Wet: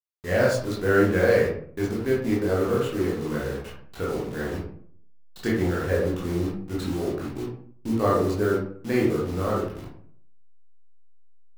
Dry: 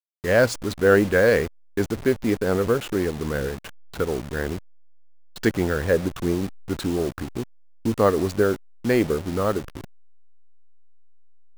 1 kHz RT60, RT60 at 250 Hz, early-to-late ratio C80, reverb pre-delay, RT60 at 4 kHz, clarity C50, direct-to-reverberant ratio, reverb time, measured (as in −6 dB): 0.55 s, 0.65 s, 7.5 dB, 16 ms, 0.30 s, 2.5 dB, −5.5 dB, 0.55 s